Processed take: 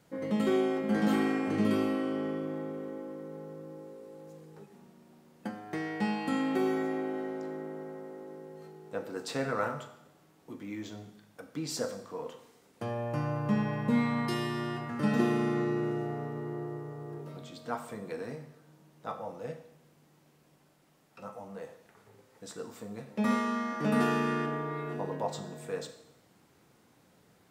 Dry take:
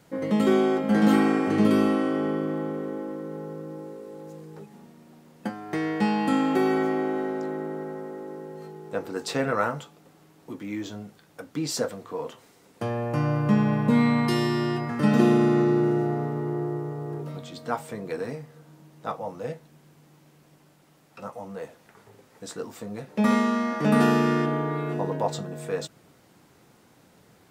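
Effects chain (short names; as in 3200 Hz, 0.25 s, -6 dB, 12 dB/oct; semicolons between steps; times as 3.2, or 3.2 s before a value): Schroeder reverb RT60 0.8 s, combs from 29 ms, DRR 8.5 dB; gain -7 dB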